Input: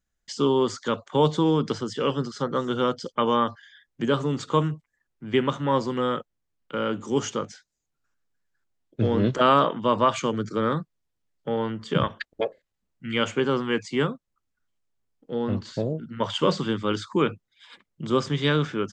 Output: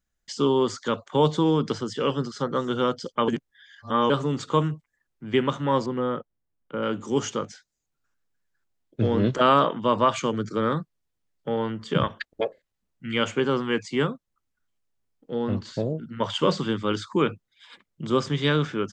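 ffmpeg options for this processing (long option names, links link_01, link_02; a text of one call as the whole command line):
ffmpeg -i in.wav -filter_complex "[0:a]asettb=1/sr,asplit=3[link_01][link_02][link_03];[link_01]atrim=end=5.864[link_04];[link_02]atrim=start=5.86:end=6.83,asetpts=PTS-STARTPTS,afade=type=in:duration=0.004:curve=qsin,afade=type=out:start_time=0.966:duration=0.004:curve=qsin,lowpass=frequency=1100:poles=1[link_05];[link_03]atrim=start=6.826[link_06];[link_04][link_05]acrossfade=duration=0.004:curve1=hsin:curve2=qsin[link_07];[link_07][link_06]acrossfade=duration=0.004:curve1=qsin:curve2=hsin,asplit=3[link_08][link_09][link_10];[link_08]atrim=end=3.282[link_11];[link_09]atrim=start=3.278:end=4.102,asetpts=PTS-STARTPTS,areverse[link_12];[link_10]atrim=start=4.098[link_13];[link_11][link_12]acrossfade=duration=0.004:curve1=hsin:curve2=hsin[link_14];[link_14][link_13]acrossfade=duration=0.004:curve1=hsin:curve2=hsin" out.wav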